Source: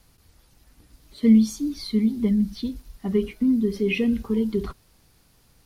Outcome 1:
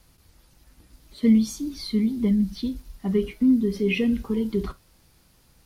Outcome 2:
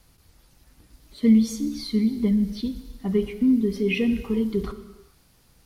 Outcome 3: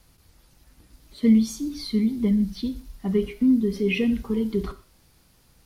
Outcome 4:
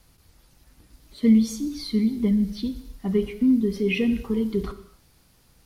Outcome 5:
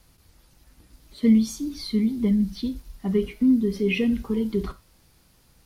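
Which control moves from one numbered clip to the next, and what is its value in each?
gated-style reverb, gate: 80 ms, 460 ms, 180 ms, 310 ms, 120 ms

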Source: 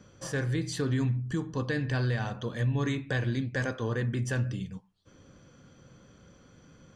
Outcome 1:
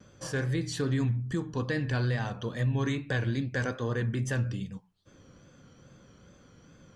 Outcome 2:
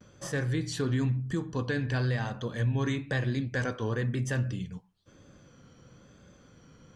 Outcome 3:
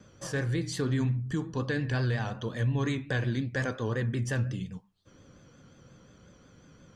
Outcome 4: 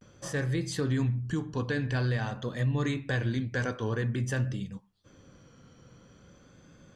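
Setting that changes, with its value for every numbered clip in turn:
vibrato, rate: 2.4 Hz, 1 Hz, 5.6 Hz, 0.48 Hz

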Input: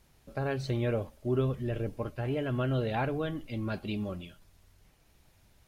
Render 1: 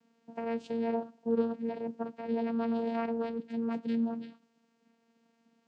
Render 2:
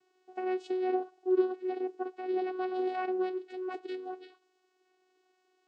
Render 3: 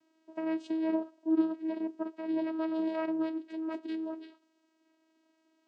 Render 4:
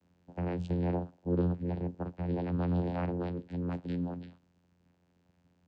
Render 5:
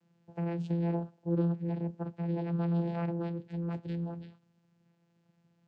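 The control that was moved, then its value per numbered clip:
vocoder, frequency: 230 Hz, 370 Hz, 320 Hz, 88 Hz, 170 Hz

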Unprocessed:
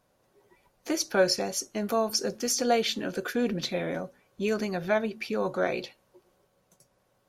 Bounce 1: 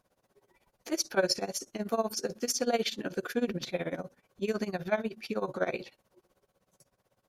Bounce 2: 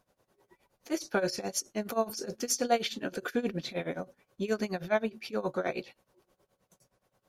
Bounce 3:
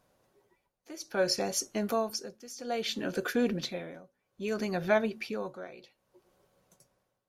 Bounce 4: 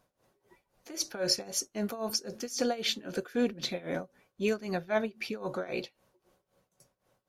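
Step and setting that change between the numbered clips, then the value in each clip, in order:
tremolo, rate: 16 Hz, 9.5 Hz, 0.61 Hz, 3.8 Hz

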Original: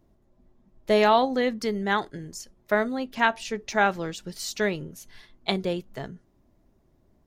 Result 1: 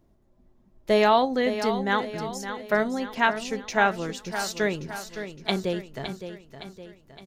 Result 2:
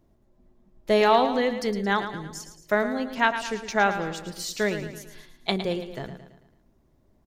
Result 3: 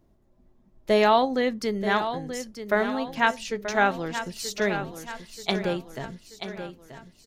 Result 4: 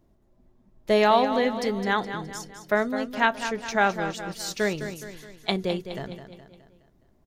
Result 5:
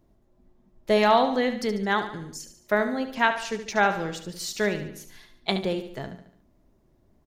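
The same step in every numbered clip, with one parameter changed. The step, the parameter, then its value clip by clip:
feedback delay, time: 564 ms, 111 ms, 932 ms, 209 ms, 72 ms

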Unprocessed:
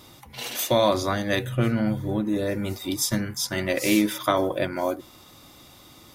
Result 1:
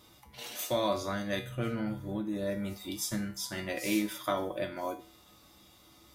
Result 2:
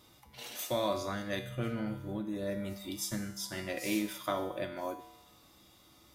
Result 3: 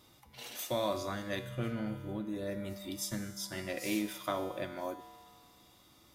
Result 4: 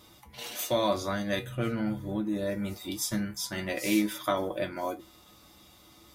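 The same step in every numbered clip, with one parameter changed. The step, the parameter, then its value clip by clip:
feedback comb, decay: 0.39 s, 0.94 s, 2 s, 0.16 s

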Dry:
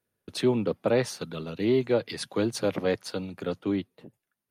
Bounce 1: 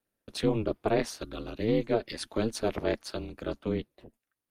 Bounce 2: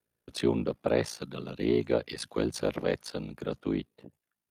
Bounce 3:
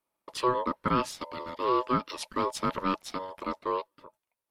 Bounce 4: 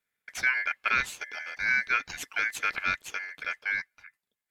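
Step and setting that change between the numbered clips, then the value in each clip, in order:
ring modulator, frequency: 110 Hz, 28 Hz, 750 Hz, 1.9 kHz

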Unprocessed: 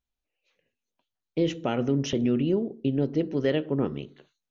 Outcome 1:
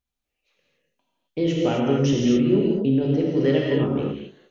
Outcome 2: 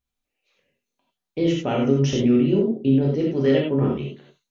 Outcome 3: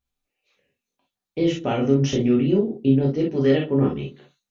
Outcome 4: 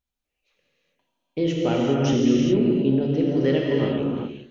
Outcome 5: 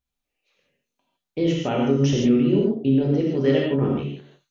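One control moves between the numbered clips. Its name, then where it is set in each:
gated-style reverb, gate: 290 ms, 120 ms, 80 ms, 440 ms, 180 ms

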